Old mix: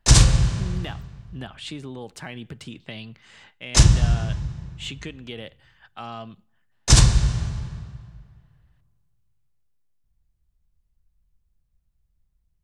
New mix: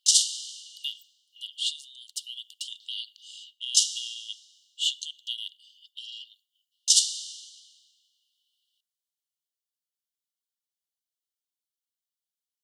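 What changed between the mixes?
speech +9.0 dB
master: add linear-phase brick-wall high-pass 2,800 Hz

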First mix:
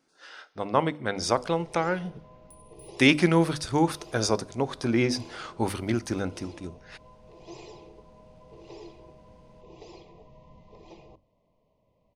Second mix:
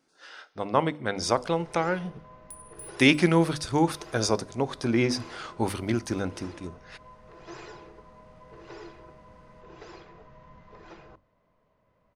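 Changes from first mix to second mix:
first sound: remove Butterworth band-reject 1,500 Hz, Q 1
second sound +10.0 dB

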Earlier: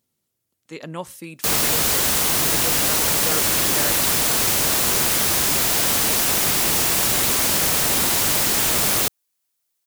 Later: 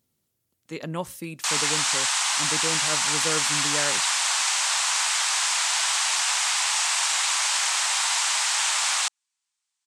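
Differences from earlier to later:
background: add elliptic band-pass filter 870–8,200 Hz, stop band 40 dB
master: add low-shelf EQ 160 Hz +5 dB

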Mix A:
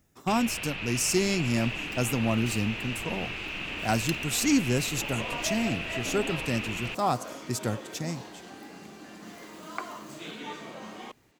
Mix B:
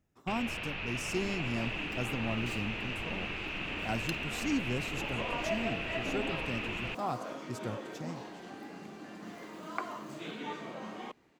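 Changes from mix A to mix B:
speech −8.5 dB
master: add high-shelf EQ 3,800 Hz −10 dB

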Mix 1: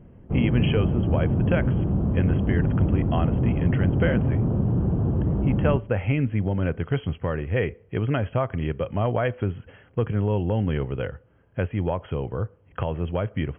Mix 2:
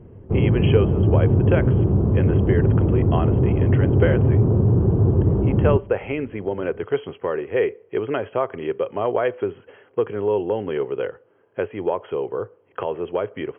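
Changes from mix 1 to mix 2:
speech: add high-pass filter 360 Hz
master: add graphic EQ with 15 bands 100 Hz +9 dB, 400 Hz +11 dB, 1,000 Hz +4 dB

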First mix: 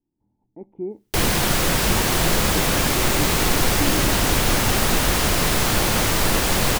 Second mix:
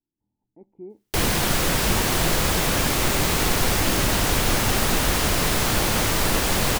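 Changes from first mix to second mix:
speech −10.0 dB
background: send −9.5 dB

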